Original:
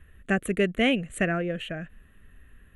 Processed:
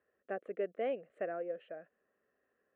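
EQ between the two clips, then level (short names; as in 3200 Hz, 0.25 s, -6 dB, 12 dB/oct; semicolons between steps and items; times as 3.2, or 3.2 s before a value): ladder band-pass 620 Hz, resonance 45%; 0.0 dB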